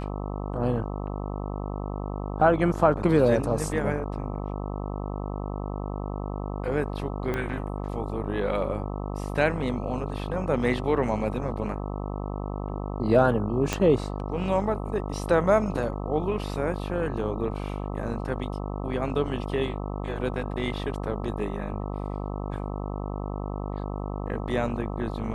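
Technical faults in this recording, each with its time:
mains buzz 50 Hz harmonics 26 −32 dBFS
0:07.34: click −17 dBFS
0:13.73: click −10 dBFS

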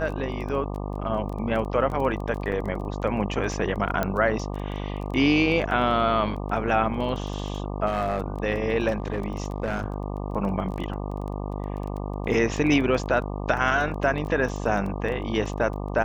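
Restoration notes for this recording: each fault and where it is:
mains buzz 50 Hz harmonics 24 −31 dBFS
surface crackle 14 per second −32 dBFS
0:02.52: drop-out 3.1 ms
0:04.03: click −11 dBFS
0:07.86–0:08.28: clipping −20 dBFS
0:08.90–0:09.86: clipping −21.5 dBFS

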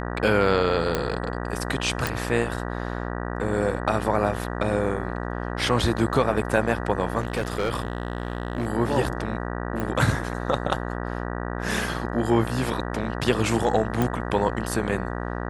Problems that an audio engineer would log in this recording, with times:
mains buzz 60 Hz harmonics 32 −30 dBFS
0:00.95: click −8 dBFS
0:02.07: click
0:07.20–0:08.67: clipping −20.5 dBFS
0:09.80: click −16 dBFS
0:14.02: click

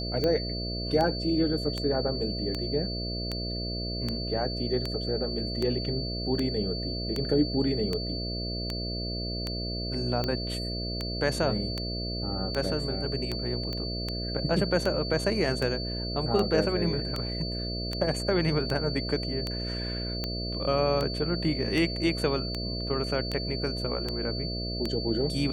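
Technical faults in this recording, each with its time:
mains buzz 60 Hz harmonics 11 −34 dBFS
scratch tick 78 rpm −16 dBFS
whistle 4,500 Hz −35 dBFS
0:13.73: click −21 dBFS

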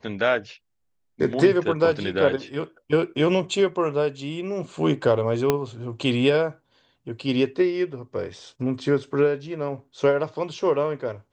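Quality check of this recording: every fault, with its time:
0:05.50: click −6 dBFS

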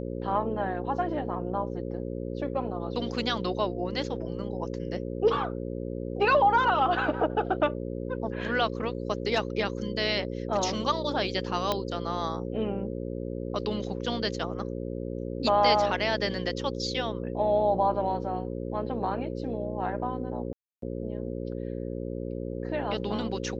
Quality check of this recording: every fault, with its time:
mains buzz 60 Hz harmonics 9 −34 dBFS
0:11.72: click −12 dBFS
0:20.53–0:20.82: drop-out 293 ms

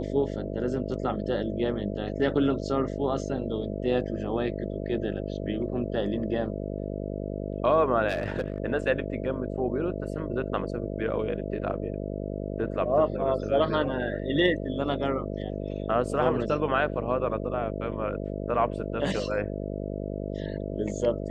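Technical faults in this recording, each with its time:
mains buzz 50 Hz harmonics 13 −33 dBFS
0:08.09–0:08.58: clipping −23 dBFS

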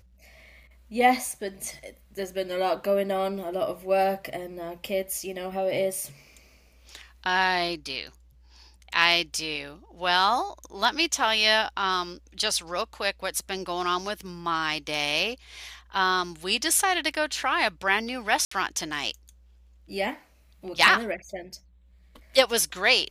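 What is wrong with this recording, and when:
0:18.45–0:18.51: drop-out 64 ms

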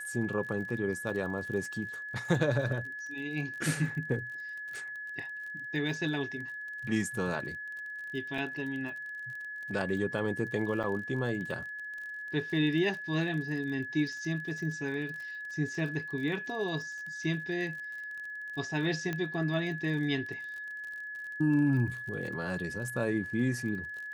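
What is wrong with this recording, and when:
surface crackle 39 per second −40 dBFS
whistle 1,700 Hz −38 dBFS
0:08.38: drop-out 2.8 ms
0:10.83–0:10.84: drop-out 6.8 ms
0:19.13: click −20 dBFS

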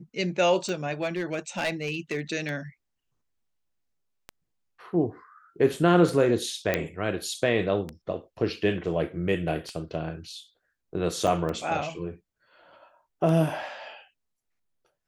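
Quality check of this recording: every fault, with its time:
scratch tick 33 1/3 rpm −20 dBFS
0:00.92–0:02.20: clipping −22.5 dBFS
0:06.74: click −10 dBFS
0:11.27–0:11.28: drop-out 5.6 ms

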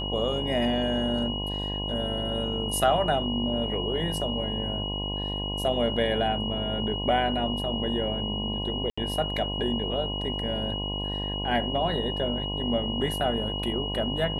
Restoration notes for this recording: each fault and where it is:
mains buzz 50 Hz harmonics 21 −33 dBFS
whistle 2,900 Hz −32 dBFS
0:08.90–0:08.97: drop-out 75 ms

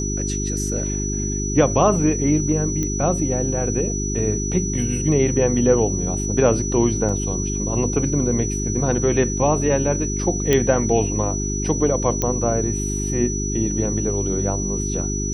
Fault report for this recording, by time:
mains hum 50 Hz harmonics 8 −25 dBFS
whistle 5,900 Hz −27 dBFS
0:02.83: click −12 dBFS
0:07.09: drop-out 3.6 ms
0:10.53: click −4 dBFS
0:12.22: click −7 dBFS

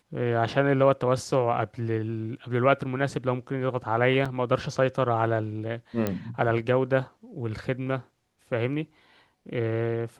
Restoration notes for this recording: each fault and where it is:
0:04.25: drop-out 5 ms
0:06.07: click −13 dBFS

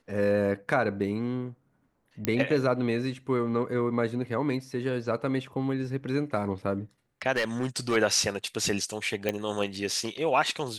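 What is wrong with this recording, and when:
0:02.25: click −10 dBFS
0:07.36–0:07.97: clipping −21.5 dBFS
0:09.29: click −13 dBFS

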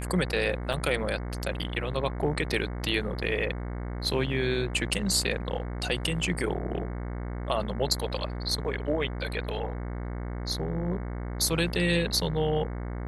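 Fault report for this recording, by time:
mains buzz 60 Hz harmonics 37 −34 dBFS
0:00.73: drop-out 4 ms

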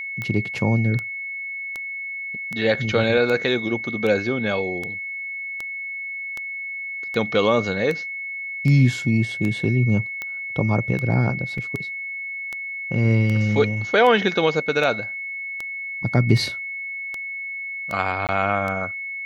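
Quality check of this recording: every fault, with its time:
scratch tick 78 rpm −15 dBFS
whistle 2,200 Hz −28 dBFS
0:11.58: drop-out 3.1 ms
0:18.27–0:18.29: drop-out 18 ms

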